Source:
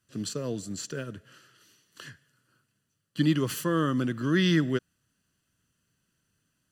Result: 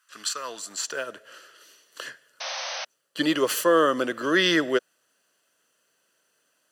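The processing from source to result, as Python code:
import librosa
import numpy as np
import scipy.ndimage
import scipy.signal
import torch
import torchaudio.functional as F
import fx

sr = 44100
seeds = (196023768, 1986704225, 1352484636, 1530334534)

y = fx.spec_paint(x, sr, seeds[0], shape='noise', start_s=2.4, length_s=0.45, low_hz=500.0, high_hz=6300.0, level_db=-41.0)
y = fx.filter_sweep_highpass(y, sr, from_hz=1200.0, to_hz=540.0, start_s=0.37, end_s=1.39, q=2.1)
y = y * 10.0 ** (7.5 / 20.0)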